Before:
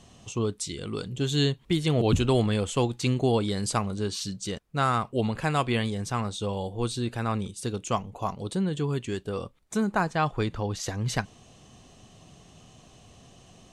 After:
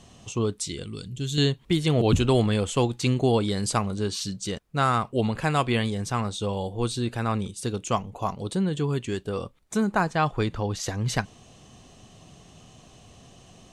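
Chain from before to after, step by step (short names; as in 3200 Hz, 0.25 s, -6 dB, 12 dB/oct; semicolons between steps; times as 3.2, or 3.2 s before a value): 0.83–1.38 bell 810 Hz -15 dB 2.8 oct; gain +2 dB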